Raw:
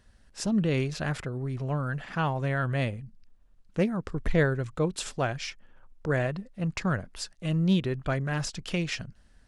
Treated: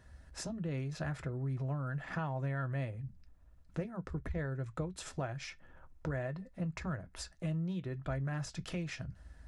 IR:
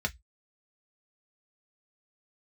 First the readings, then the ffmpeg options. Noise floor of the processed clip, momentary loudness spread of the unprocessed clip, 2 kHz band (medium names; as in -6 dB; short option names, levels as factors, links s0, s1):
-61 dBFS, 11 LU, -11.5 dB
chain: -filter_complex "[0:a]acompressor=threshold=0.0112:ratio=6,asplit=2[s0][s1];[1:a]atrim=start_sample=2205,lowshelf=f=85:g=7.5[s2];[s1][s2]afir=irnorm=-1:irlink=0,volume=0.335[s3];[s0][s3]amix=inputs=2:normalize=0"